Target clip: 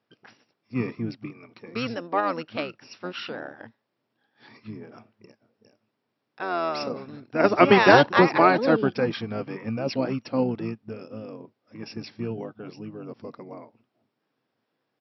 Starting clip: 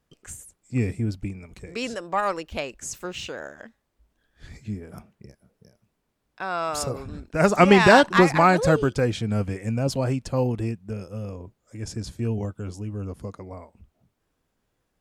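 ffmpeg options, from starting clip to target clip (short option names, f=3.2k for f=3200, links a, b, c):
-filter_complex "[0:a]afftfilt=real='re*between(b*sr/4096,210,5700)':imag='im*between(b*sr/4096,210,5700)':win_size=4096:overlap=0.75,asplit=2[a][b];[b]asetrate=22050,aresample=44100,atempo=2,volume=-5dB[c];[a][c]amix=inputs=2:normalize=0,volume=-1dB"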